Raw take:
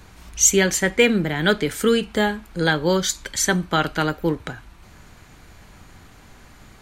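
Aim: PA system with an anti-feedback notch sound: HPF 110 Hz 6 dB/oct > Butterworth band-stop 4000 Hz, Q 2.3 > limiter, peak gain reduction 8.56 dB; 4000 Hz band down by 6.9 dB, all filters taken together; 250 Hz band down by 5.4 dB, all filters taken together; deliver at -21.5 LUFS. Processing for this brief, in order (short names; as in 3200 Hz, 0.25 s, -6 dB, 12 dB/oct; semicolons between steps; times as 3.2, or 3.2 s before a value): HPF 110 Hz 6 dB/oct; Butterworth band-stop 4000 Hz, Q 2.3; bell 250 Hz -6.5 dB; bell 4000 Hz -6 dB; gain +4 dB; limiter -10.5 dBFS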